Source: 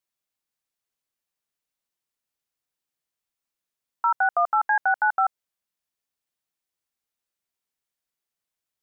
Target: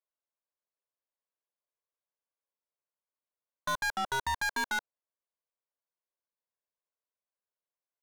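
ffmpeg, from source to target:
-af "highpass=520,aecho=1:1:2.1:0.36,asetrate=48510,aresample=44100,adynamicsmooth=sensitivity=1:basefreq=900,aeval=exprs='(tanh(39.8*val(0)+0.15)-tanh(0.15))/39.8':c=same,volume=1.41"

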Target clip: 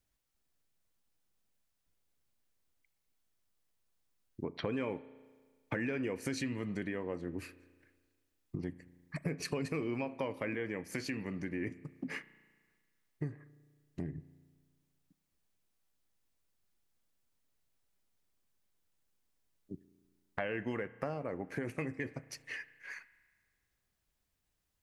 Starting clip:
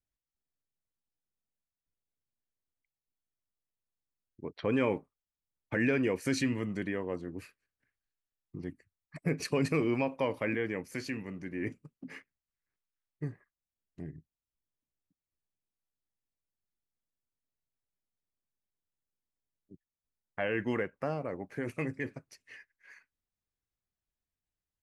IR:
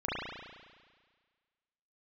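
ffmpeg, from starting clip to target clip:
-filter_complex "[0:a]acompressor=threshold=0.00501:ratio=4,asplit=2[s0][s1];[1:a]atrim=start_sample=2205[s2];[s1][s2]afir=irnorm=-1:irlink=0,volume=0.0631[s3];[s0][s3]amix=inputs=2:normalize=0,volume=2.82"

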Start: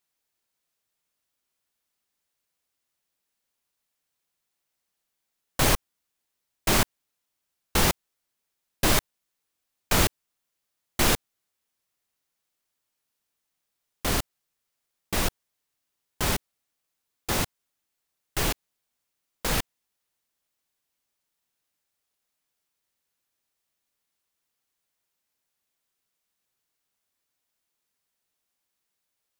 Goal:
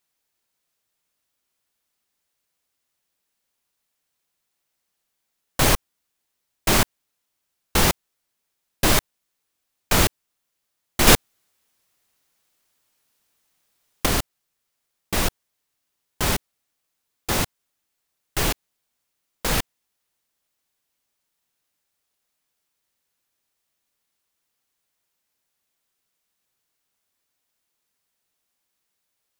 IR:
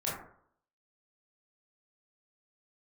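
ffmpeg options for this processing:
-filter_complex "[0:a]asettb=1/sr,asplit=3[s0][s1][s2];[s0]atrim=end=11.074[s3];[s1]atrim=start=11.07:end=14.06,asetpts=PTS-STARTPTS,afade=t=in:d=0.004:c=qsin,afade=t=out:st=2.986:d=0.004:c=qsin,acontrast=83[s4];[s2]atrim=start=14.056[s5];[s3][s4]acrossfade=d=0.004:c1=hsin:c2=qsin[s6];[s6][s5]acrossfade=d=0.004:c1=qsin:c2=hsin,volume=1.5"

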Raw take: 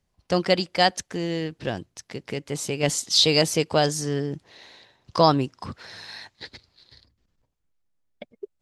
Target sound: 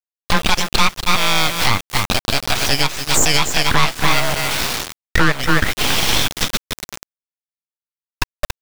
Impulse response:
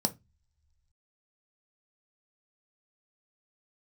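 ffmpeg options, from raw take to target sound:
-filter_complex "[0:a]highpass=f=600:t=q:w=0.5412,highpass=f=600:t=q:w=1.307,lowpass=f=3300:t=q:w=0.5176,lowpass=f=3300:t=q:w=0.7071,lowpass=f=3300:t=q:w=1.932,afreqshift=-110,asplit=2[s0][s1];[s1]aecho=0:1:280:0.237[s2];[s0][s2]amix=inputs=2:normalize=0,aeval=exprs='abs(val(0))':c=same,highshelf=f=2100:g=4.5,acrusher=bits=7:mix=0:aa=0.000001,acompressor=threshold=0.0112:ratio=3,alimiter=level_in=31.6:limit=0.891:release=50:level=0:latency=1,volume=0.891"

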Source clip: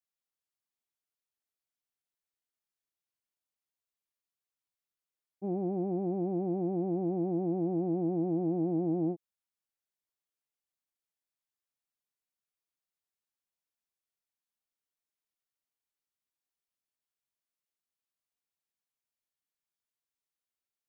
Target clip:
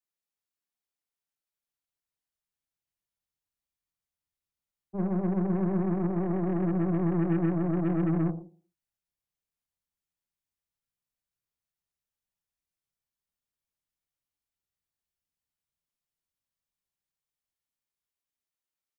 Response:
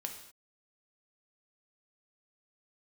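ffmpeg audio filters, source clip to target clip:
-filter_complex "[0:a]atempo=1.1,aecho=1:1:80|160|240:0.141|0.0579|0.0237[s0];[1:a]atrim=start_sample=2205,afade=t=out:st=0.23:d=0.01,atrim=end_sample=10584[s1];[s0][s1]afir=irnorm=-1:irlink=0,acrossover=split=150[s2][s3];[s2]dynaudnorm=f=410:g=11:m=4.73[s4];[s3]aeval=exprs='0.0841*(cos(1*acos(clip(val(0)/0.0841,-1,1)))-cos(1*PI/2))+0.0106*(cos(8*acos(clip(val(0)/0.0841,-1,1)))-cos(8*PI/2))':c=same[s5];[s4][s5]amix=inputs=2:normalize=0"

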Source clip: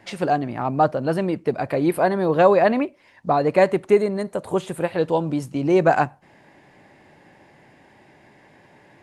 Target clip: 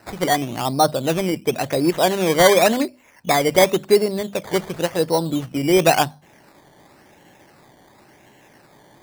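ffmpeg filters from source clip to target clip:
-af "bandreject=f=50:t=h:w=6,bandreject=f=100:t=h:w=6,bandreject=f=150:t=h:w=6,bandreject=f=200:t=h:w=6,bandreject=f=250:t=h:w=6,acrusher=samples=13:mix=1:aa=0.000001:lfo=1:lforange=7.8:lforate=0.93,volume=1.19"

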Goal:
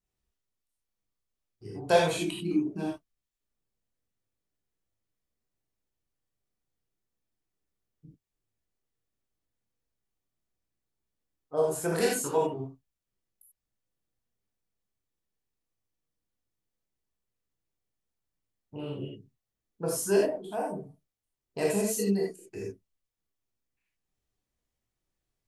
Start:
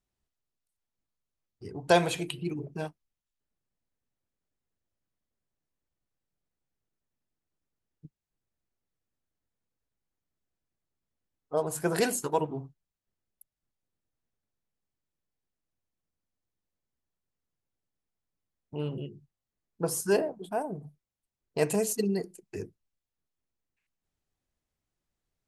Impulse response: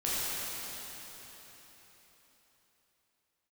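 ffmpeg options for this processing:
-filter_complex "[0:a]asettb=1/sr,asplit=3[s0][s1][s2];[s0]atrim=end=2.144[s3];[s1]atrim=start=2.14:end=2.88,asetpts=PTS-STARTPTS,afade=t=in:d=0.004:c=qsin,afade=t=out:st=0.736:d=0.004:c=qsin,equalizer=f=125:t=o:w=0.33:g=-11,equalizer=f=200:t=o:w=0.33:g=11,equalizer=f=315:t=o:w=0.33:g=12,equalizer=f=500:t=o:w=0.33:g=-12,equalizer=f=2000:t=o:w=0.33:g=-4[s4];[s2]atrim=start=2.876[s5];[s3][s4]acrossfade=d=0.004:c1=hsin:c2=qsin[s6];[s6][s5]acrossfade=d=0.004:c1=qsin:c2=hsin[s7];[1:a]atrim=start_sample=2205,atrim=end_sample=4410[s8];[s7][s8]afir=irnorm=-1:irlink=0,volume=0.631"

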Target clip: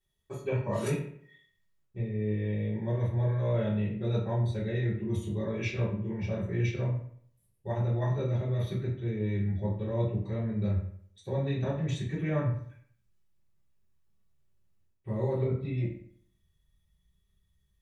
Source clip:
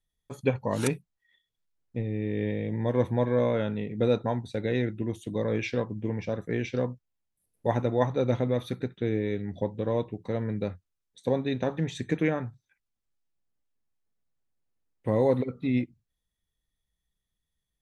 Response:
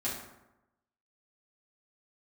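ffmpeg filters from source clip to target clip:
-filter_complex "[0:a]asubboost=boost=4:cutoff=160,areverse,acompressor=threshold=0.0251:ratio=10,areverse[s0];[1:a]atrim=start_sample=2205,asetrate=70560,aresample=44100[s1];[s0][s1]afir=irnorm=-1:irlink=0,volume=1.68"

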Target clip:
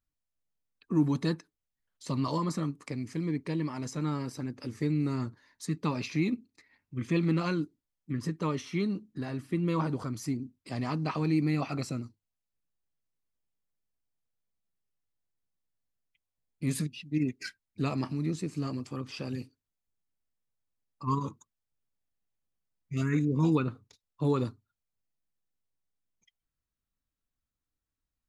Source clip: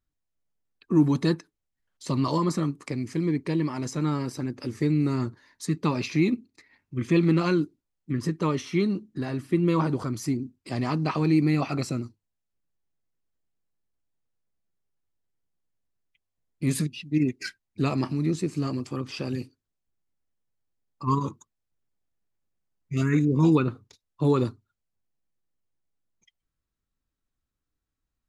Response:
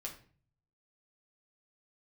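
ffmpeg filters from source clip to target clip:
-af "equalizer=f=360:w=7.9:g=-6,volume=0.562"

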